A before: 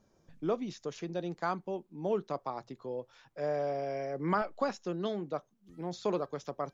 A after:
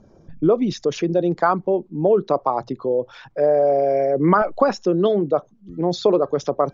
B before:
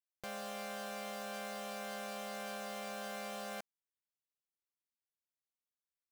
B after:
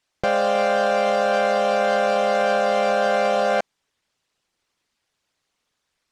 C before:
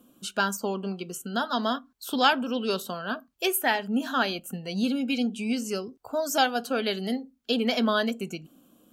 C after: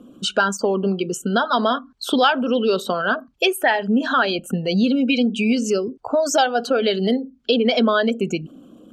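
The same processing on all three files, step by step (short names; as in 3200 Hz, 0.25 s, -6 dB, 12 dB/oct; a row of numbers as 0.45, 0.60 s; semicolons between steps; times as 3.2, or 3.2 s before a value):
formant sharpening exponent 1.5; LPF 6000 Hz 12 dB/oct; compressor 2.5:1, threshold -31 dBFS; match loudness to -20 LUFS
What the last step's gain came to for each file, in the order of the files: +18.0, +24.0, +14.0 dB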